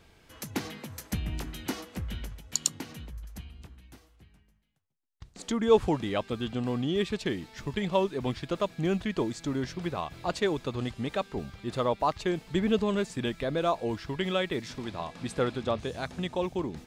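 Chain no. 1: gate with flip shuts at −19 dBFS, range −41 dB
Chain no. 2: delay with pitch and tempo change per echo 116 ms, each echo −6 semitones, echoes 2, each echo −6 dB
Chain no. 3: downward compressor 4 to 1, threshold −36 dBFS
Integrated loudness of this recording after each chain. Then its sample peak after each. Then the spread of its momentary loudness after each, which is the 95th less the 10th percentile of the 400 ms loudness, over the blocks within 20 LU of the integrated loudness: −36.5, −30.5, −40.0 LKFS; −14.5, −8.0, −17.0 dBFS; 13, 13, 6 LU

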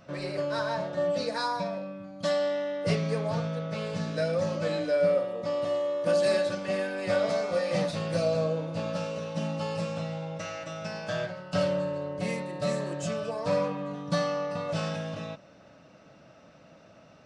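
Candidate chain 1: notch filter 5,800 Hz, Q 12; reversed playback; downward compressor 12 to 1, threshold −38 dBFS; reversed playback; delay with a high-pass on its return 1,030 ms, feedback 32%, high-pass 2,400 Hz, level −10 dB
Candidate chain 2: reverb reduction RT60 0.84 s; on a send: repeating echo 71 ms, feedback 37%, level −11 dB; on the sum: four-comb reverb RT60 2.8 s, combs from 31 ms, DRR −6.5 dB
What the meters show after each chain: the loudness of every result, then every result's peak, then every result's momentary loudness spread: −42.0, −23.5 LKFS; −28.5, −7.0 dBFS; 4, 8 LU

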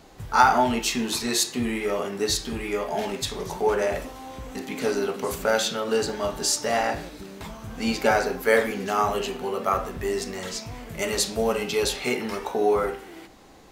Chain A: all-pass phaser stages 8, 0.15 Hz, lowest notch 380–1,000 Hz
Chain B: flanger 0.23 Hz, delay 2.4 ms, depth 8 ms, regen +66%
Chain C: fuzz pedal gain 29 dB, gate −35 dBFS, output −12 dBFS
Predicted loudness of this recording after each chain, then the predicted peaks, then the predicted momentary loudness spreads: −29.0, −29.5, −17.5 LKFS; −7.5, −8.5, −10.5 dBFS; 14, 12, 9 LU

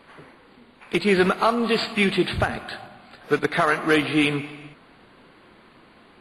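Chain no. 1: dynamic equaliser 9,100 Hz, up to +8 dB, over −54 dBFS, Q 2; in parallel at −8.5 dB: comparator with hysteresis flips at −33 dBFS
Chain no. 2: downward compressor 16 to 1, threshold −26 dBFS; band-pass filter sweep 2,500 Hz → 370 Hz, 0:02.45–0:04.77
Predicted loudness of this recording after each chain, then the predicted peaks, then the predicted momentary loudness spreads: −20.5, −40.0 LKFS; −7.5, −20.5 dBFS; 12, 23 LU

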